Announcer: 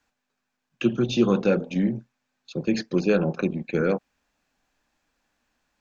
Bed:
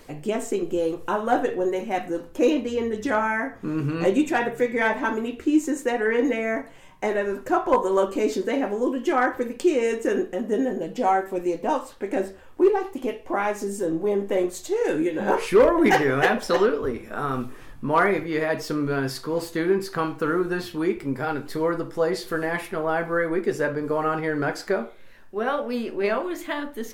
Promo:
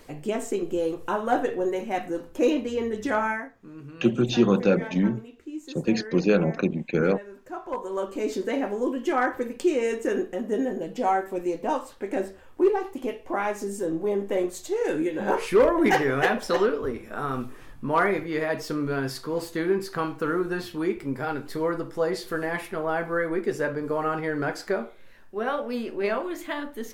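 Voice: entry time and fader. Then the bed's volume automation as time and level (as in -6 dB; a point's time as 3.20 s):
3.20 s, +0.5 dB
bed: 3.31 s -2 dB
3.54 s -16.5 dB
7.39 s -16.5 dB
8.42 s -2.5 dB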